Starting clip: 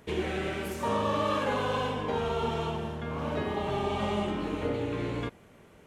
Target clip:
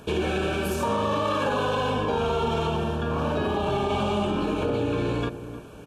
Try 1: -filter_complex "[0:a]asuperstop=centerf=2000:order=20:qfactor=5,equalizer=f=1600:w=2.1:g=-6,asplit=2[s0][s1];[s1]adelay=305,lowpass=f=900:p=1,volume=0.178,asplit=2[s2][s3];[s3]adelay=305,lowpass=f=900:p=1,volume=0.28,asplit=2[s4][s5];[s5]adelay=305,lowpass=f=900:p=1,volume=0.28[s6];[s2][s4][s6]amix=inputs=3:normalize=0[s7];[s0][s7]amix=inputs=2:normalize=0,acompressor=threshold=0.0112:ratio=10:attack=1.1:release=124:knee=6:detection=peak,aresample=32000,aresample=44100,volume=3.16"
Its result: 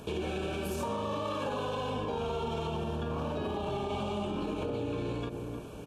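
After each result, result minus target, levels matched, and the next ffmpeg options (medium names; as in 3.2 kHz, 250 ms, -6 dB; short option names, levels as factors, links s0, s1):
compression: peak gain reduction +8.5 dB; 2 kHz band -3.0 dB
-filter_complex "[0:a]asuperstop=centerf=2000:order=20:qfactor=5,equalizer=f=1600:w=2.1:g=-6,asplit=2[s0][s1];[s1]adelay=305,lowpass=f=900:p=1,volume=0.178,asplit=2[s2][s3];[s3]adelay=305,lowpass=f=900:p=1,volume=0.28,asplit=2[s4][s5];[s5]adelay=305,lowpass=f=900:p=1,volume=0.28[s6];[s2][s4][s6]amix=inputs=3:normalize=0[s7];[s0][s7]amix=inputs=2:normalize=0,acompressor=threshold=0.0355:ratio=10:attack=1.1:release=124:knee=6:detection=peak,aresample=32000,aresample=44100,volume=3.16"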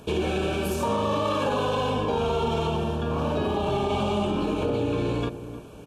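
2 kHz band -3.0 dB
-filter_complex "[0:a]asuperstop=centerf=2000:order=20:qfactor=5,asplit=2[s0][s1];[s1]adelay=305,lowpass=f=900:p=1,volume=0.178,asplit=2[s2][s3];[s3]adelay=305,lowpass=f=900:p=1,volume=0.28,asplit=2[s4][s5];[s5]adelay=305,lowpass=f=900:p=1,volume=0.28[s6];[s2][s4][s6]amix=inputs=3:normalize=0[s7];[s0][s7]amix=inputs=2:normalize=0,acompressor=threshold=0.0355:ratio=10:attack=1.1:release=124:knee=6:detection=peak,aresample=32000,aresample=44100,volume=3.16"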